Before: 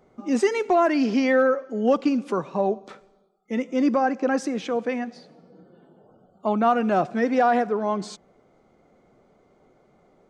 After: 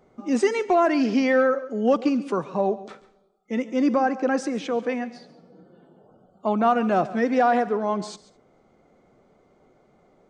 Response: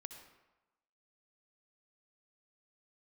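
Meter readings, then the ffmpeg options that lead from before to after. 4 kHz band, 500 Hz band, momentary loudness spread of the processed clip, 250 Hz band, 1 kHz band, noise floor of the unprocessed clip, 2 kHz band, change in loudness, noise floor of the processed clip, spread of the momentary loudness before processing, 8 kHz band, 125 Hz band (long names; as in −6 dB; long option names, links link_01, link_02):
0.0 dB, 0.0 dB, 10 LU, 0.0 dB, 0.0 dB, −61 dBFS, 0.0 dB, 0.0 dB, −61 dBFS, 10 LU, 0.0 dB, 0.0 dB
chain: -filter_complex "[0:a]asplit=2[link_01][link_02];[1:a]atrim=start_sample=2205,atrim=end_sample=3528,adelay=139[link_03];[link_02][link_03]afir=irnorm=-1:irlink=0,volume=-11.5dB[link_04];[link_01][link_04]amix=inputs=2:normalize=0,aresample=22050,aresample=44100"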